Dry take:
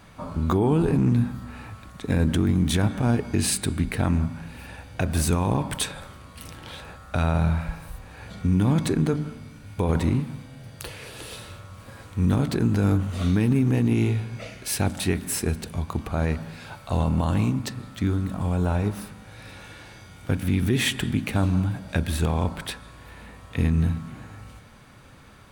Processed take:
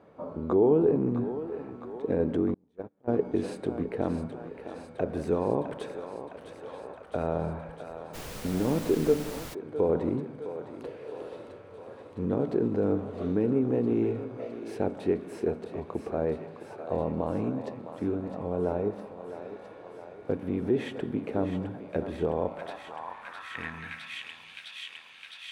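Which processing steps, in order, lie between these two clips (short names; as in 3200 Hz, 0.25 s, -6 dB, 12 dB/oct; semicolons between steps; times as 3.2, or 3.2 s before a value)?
on a send: thinning echo 0.66 s, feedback 81%, high-pass 470 Hz, level -9 dB; on the sum: band-pass sweep 460 Hz -> 2900 Hz, 22.31–24.33; 2.54–3.08 gate -27 dBFS, range -37 dB; 8.13–9.53 added noise pink -46 dBFS; gain +5 dB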